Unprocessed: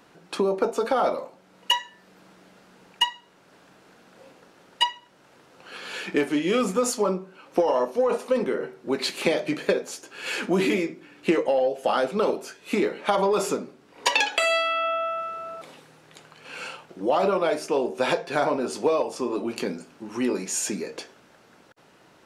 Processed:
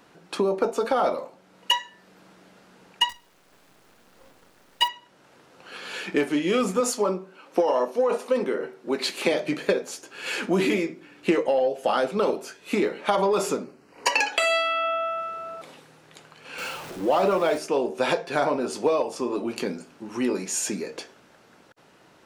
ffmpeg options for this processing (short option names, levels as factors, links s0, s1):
-filter_complex "[0:a]asettb=1/sr,asplit=3[s0][s1][s2];[s0]atrim=end=3.094[s3];[s1]atrim=start=3.09:end=4.88,asetpts=PTS-STARTPTS,afade=t=in:d=0.004:c=qsin,afade=t=out:st=1.786:d=0.004:c=qsin,acrusher=bits=7:dc=4:mix=0:aa=0.000001[s4];[s2]atrim=start=4.876[s5];[s3][s4]acrossfade=d=0.004:c1=hsin:c2=qsin[s6];[s6][s5]acrossfade=d=0.004:c1=qsin:c2=hsin,asettb=1/sr,asplit=3[s7][s8][s9];[s7]atrim=end=6.804[s10];[s8]atrim=start=6.8:end=9.32,asetpts=PTS-STARTPTS,afade=t=in:d=0.004:c=qsin,afade=t=out:st=2.516:d=0.004:c=qsin,highpass=190[s11];[s9]atrim=start=9.316[s12];[s10][s11]acrossfade=d=0.004:c1=hsin:c2=qsin[s13];[s13][s12]acrossfade=d=0.004:c1=qsin:c2=hsin,asettb=1/sr,asplit=3[s14][s15][s16];[s14]atrim=end=13.644[s17];[s15]atrim=start=13.64:end=14.33,asetpts=PTS-STARTPTS,afade=t=in:d=0.004:c=qsin,afade=t=out:st=0.686:d=0.004:c=qsin,asuperstop=centerf=3500:order=4:qfactor=3.5[s18];[s16]atrim=start=14.326[s19];[s17][s18]acrossfade=d=0.004:c1=hsin:c2=qsin[s20];[s20][s19]acrossfade=d=0.004:c1=qsin:c2=hsin,asettb=1/sr,asplit=3[s21][s22][s23];[s21]atrim=end=16.584[s24];[s22]atrim=start=16.58:end=17.58,asetpts=PTS-STARTPTS,afade=t=in:d=0.004:c=qsin,afade=t=out:st=0.996:d=0.004:c=qsin,aeval=exprs='val(0)+0.5*0.0178*sgn(val(0))':c=same[s25];[s23]atrim=start=17.576[s26];[s24][s25]acrossfade=d=0.004:c1=hsin:c2=qsin[s27];[s27][s26]acrossfade=d=0.004:c1=qsin:c2=hsin"